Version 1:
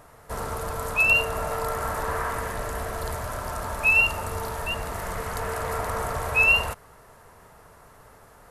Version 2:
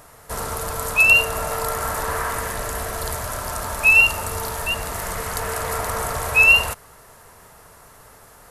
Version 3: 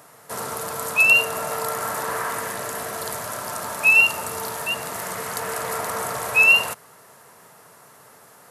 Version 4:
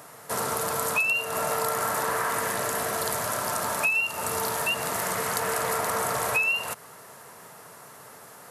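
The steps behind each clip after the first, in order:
high-shelf EQ 2,900 Hz +9 dB; level +2 dB
high-pass filter 130 Hz 24 dB per octave; level −1.5 dB
downward compressor 12 to 1, threshold −25 dBFS, peak gain reduction 15 dB; level +2.5 dB

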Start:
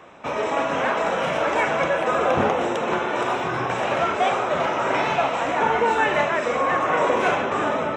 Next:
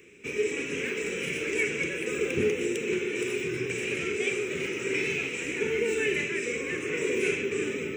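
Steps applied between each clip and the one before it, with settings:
drawn EQ curve 290 Hz 0 dB, 420 Hz +9 dB, 650 Hz −29 dB, 1,100 Hz −23 dB, 2,400 Hz +9 dB, 3,600 Hz −4 dB, 8,800 Hz +14 dB
level −6 dB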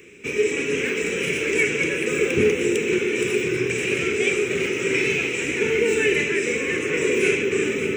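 delay that swaps between a low-pass and a high-pass 293 ms, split 1,700 Hz, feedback 77%, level −10 dB
level +7 dB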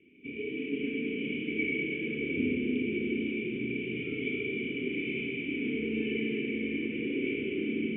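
formant resonators in series i
four-comb reverb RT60 3.3 s, combs from 28 ms, DRR −3 dB
level −4 dB

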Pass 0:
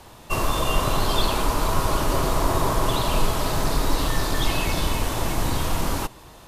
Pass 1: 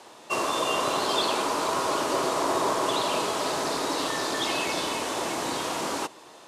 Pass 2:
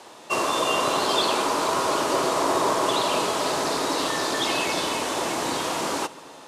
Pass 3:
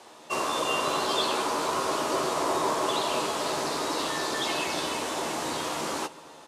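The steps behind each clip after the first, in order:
Chebyshev band-pass filter 350–8,000 Hz, order 2
convolution reverb RT60 4.4 s, pre-delay 3 ms, DRR 18.5 dB; level +3 dB
double-tracking delay 13 ms −7.5 dB; level −5 dB

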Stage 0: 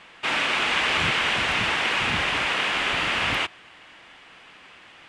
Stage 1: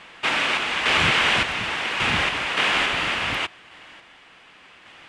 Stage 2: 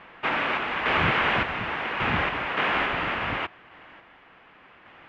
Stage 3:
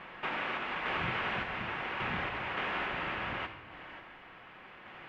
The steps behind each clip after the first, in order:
sample-and-hold tremolo; level +4 dB
low-pass filter 1,800 Hz 12 dB per octave
downward compressor 2 to 1, threshold −42 dBFS, peak gain reduction 12.5 dB; on a send at −8 dB: high-shelf EQ 4,400 Hz +10 dB + convolution reverb RT60 1.4 s, pre-delay 5 ms

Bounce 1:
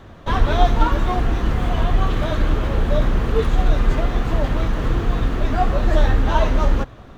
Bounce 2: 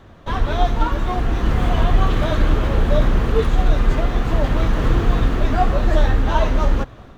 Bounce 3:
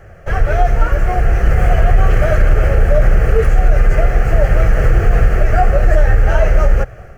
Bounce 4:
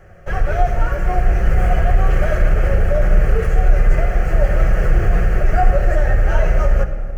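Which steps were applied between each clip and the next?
automatic gain control; level −3 dB
phaser with its sweep stopped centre 1,000 Hz, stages 6; boost into a limiter +9 dB; level −1 dB
rectangular room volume 2,800 cubic metres, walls mixed, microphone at 0.99 metres; level −5 dB

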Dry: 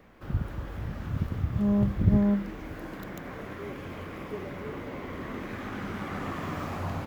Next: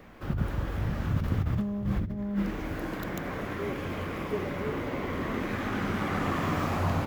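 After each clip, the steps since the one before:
hum removal 64.53 Hz, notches 35
compressor whose output falls as the input rises −30 dBFS, ratio −1
level +3 dB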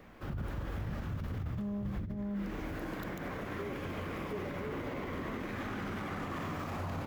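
brickwall limiter −26 dBFS, peak gain reduction 10 dB
level −4 dB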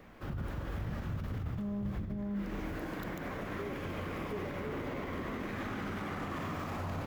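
convolution reverb RT60 0.95 s, pre-delay 75 ms, DRR 11.5 dB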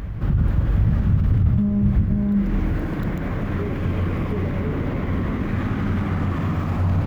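bass and treble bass +13 dB, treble −6 dB
backwards echo 708 ms −12 dB
level +7.5 dB

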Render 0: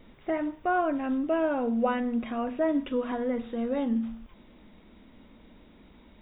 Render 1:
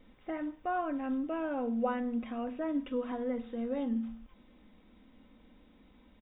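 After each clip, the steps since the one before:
comb filter 3.9 ms, depth 37%
level −7.5 dB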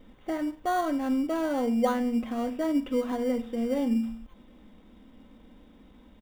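parametric band 2,400 Hz −4.5 dB 0.25 octaves
in parallel at −10 dB: sample-rate reduction 2,600 Hz, jitter 0%
on the sum: level +4.5 dB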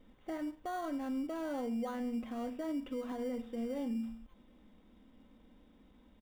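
brickwall limiter −22 dBFS, peak gain reduction 8.5 dB
level −8.5 dB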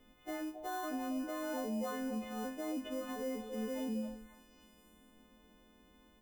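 every partial snapped to a pitch grid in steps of 3 semitones
echo through a band-pass that steps 271 ms, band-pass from 560 Hz, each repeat 1.4 octaves, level −4.5 dB
level −1.5 dB

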